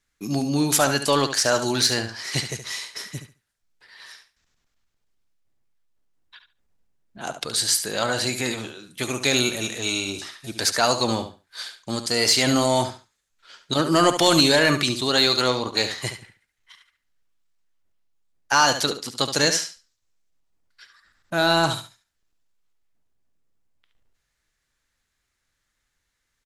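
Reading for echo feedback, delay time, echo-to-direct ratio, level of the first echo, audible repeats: 20%, 71 ms, −10.0 dB, −10.0 dB, 2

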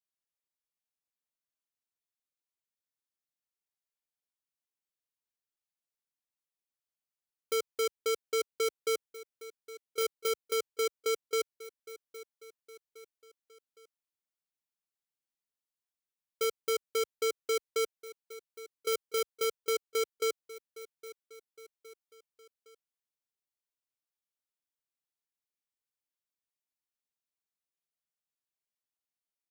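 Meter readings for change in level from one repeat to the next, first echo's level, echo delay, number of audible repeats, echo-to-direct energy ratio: −5.5 dB, −17.5 dB, 813 ms, 3, −16.0 dB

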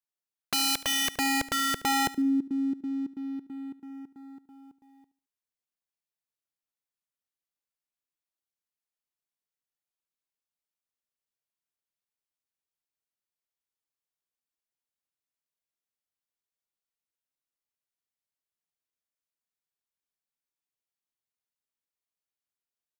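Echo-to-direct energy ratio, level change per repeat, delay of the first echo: −17.0 dB, −10.0 dB, 73 ms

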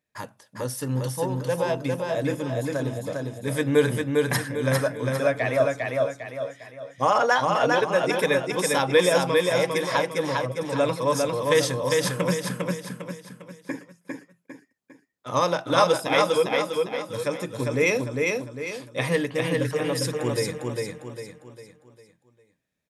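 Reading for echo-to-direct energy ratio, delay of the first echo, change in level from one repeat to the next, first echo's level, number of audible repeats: −2.0 dB, 402 ms, −7.5 dB, −3.0 dB, 5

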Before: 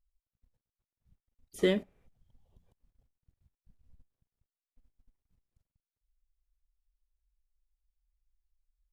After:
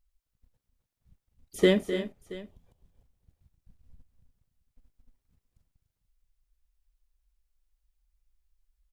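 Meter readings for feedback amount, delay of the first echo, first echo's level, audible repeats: repeats not evenly spaced, 256 ms, −12.5 dB, 3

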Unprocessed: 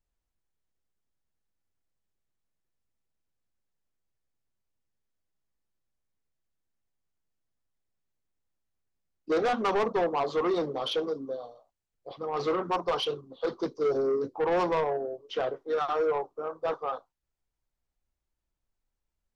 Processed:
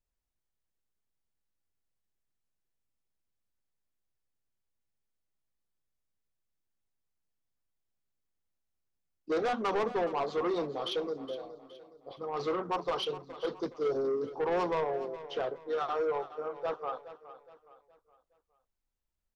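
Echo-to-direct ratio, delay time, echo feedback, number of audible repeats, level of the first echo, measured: −14.0 dB, 417 ms, 39%, 3, −14.5 dB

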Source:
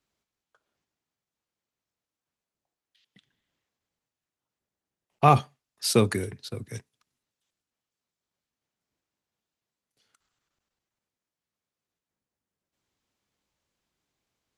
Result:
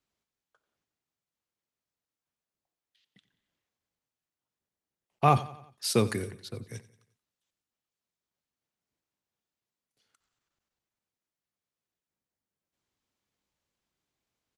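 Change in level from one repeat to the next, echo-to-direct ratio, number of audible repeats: −6.0 dB, −17.0 dB, 3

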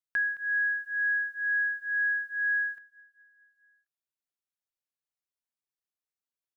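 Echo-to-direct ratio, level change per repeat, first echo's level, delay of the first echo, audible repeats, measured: −17.0 dB, −4.5 dB, −19.0 dB, 217 ms, 4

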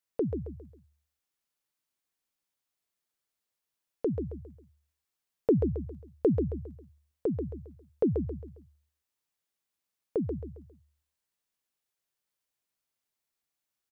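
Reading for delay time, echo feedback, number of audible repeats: 135 ms, 37%, 4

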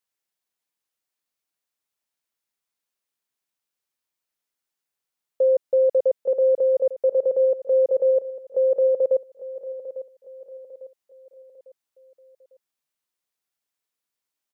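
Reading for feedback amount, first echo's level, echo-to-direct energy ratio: 43%, −14.0 dB, −13.0 dB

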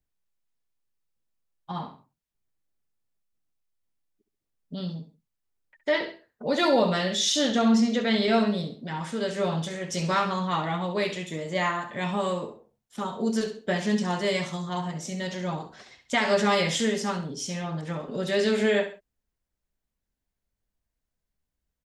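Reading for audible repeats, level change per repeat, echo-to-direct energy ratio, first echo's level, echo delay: 2, −9.0 dB, −10.5 dB, −11.0 dB, 67 ms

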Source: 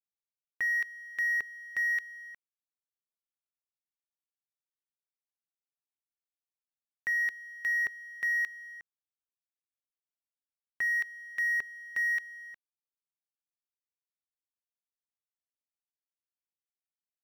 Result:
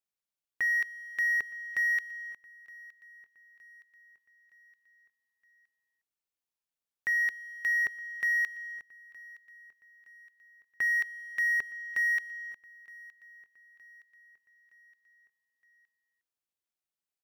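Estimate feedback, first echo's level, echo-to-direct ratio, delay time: 51%, −22.0 dB, −20.5 dB, 917 ms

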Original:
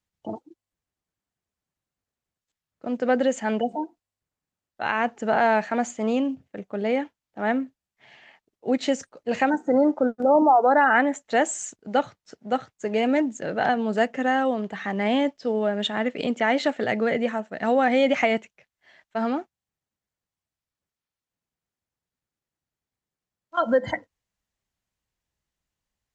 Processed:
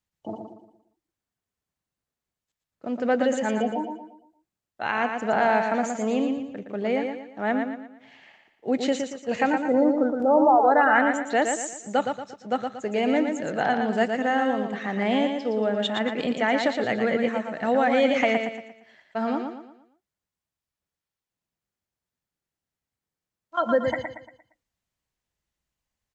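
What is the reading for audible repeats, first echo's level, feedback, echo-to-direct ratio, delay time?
4, −5.5 dB, 39%, −5.0 dB, 116 ms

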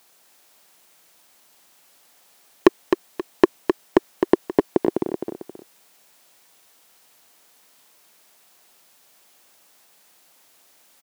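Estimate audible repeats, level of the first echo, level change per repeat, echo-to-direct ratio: 2, −6.5 dB, −10.0 dB, −6.0 dB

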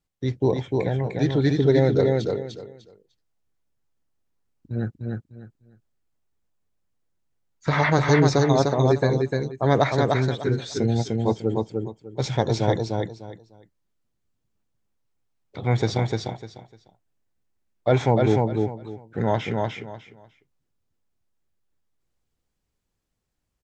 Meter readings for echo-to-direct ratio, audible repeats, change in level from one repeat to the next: −3.0 dB, 3, −13.0 dB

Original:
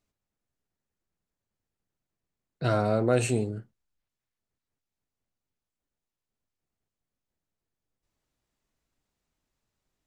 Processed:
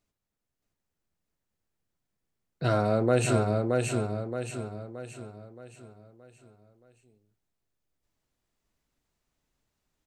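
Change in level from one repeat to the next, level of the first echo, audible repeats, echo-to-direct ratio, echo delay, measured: −7.0 dB, −3.0 dB, 5, −2.0 dB, 623 ms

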